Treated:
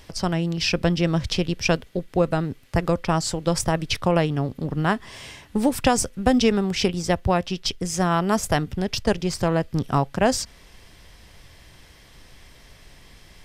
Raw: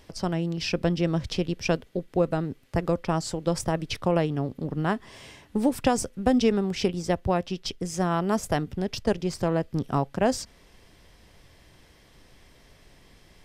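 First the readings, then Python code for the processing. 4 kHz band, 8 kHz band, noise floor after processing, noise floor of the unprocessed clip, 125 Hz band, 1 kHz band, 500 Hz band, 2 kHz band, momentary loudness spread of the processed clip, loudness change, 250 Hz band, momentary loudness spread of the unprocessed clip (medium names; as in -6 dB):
+7.5 dB, +7.5 dB, -50 dBFS, -57 dBFS, +4.5 dB, +4.5 dB, +3.0 dB, +6.5 dB, 6 LU, +4.0 dB, +3.0 dB, 6 LU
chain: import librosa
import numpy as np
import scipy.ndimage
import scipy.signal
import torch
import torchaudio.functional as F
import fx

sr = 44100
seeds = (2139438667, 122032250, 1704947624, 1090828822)

y = fx.peak_eq(x, sr, hz=350.0, db=-5.5, octaves=2.6)
y = y * 10.0 ** (7.5 / 20.0)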